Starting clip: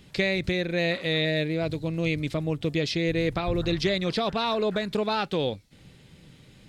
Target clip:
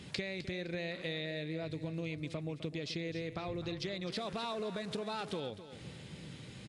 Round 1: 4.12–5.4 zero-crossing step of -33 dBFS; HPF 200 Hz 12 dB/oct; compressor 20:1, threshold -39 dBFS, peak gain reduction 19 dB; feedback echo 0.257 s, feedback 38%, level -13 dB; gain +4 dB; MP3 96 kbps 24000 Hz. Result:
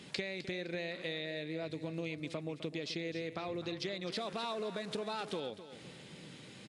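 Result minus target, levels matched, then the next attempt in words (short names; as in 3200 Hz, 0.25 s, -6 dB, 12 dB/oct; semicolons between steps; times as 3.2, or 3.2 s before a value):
125 Hz band -4.5 dB
4.12–5.4 zero-crossing step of -33 dBFS; HPF 77 Hz 12 dB/oct; compressor 20:1, threshold -39 dBFS, peak gain reduction 20 dB; feedback echo 0.257 s, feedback 38%, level -13 dB; gain +4 dB; MP3 96 kbps 24000 Hz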